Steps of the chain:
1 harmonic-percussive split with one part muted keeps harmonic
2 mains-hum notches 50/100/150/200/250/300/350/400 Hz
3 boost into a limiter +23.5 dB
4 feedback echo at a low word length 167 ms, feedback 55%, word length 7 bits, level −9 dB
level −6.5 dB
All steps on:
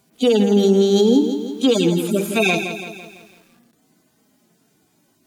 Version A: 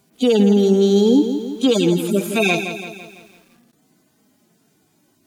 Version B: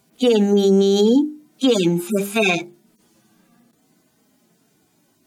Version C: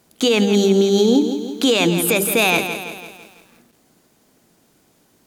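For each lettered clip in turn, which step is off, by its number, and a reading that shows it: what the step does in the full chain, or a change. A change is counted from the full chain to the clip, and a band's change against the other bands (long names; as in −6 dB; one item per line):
2, 125 Hz band +1.5 dB
4, change in crest factor −2.0 dB
1, 8 kHz band +5.5 dB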